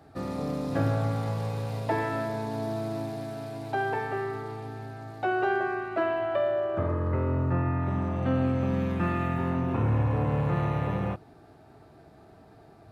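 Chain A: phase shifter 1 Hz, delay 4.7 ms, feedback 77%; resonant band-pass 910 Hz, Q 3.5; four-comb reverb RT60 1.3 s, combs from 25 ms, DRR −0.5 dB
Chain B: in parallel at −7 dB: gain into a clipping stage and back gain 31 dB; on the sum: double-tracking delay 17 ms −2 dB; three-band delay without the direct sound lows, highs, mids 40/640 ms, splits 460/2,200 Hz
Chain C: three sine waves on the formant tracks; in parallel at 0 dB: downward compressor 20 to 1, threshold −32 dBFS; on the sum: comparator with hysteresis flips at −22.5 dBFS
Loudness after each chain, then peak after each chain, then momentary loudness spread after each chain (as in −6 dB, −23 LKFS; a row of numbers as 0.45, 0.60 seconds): −33.0, −26.5, −31.0 LKFS; −15.0, −11.5, −20.5 dBFS; 10, 9, 14 LU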